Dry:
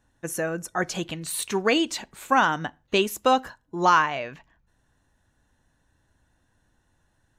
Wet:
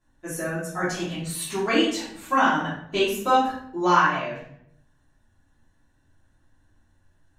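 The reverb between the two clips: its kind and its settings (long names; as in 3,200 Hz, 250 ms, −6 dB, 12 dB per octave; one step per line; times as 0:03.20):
rectangular room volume 130 cubic metres, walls mixed, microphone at 3 metres
level −11 dB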